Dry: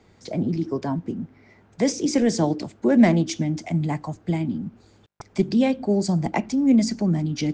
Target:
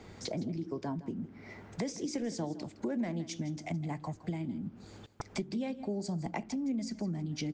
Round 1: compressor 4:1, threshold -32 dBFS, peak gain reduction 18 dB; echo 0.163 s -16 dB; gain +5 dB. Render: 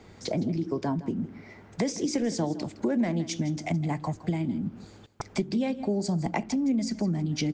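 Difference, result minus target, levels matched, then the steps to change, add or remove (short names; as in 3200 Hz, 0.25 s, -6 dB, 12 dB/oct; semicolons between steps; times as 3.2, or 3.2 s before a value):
compressor: peak gain reduction -8 dB
change: compressor 4:1, threshold -42.5 dBFS, peak gain reduction 26 dB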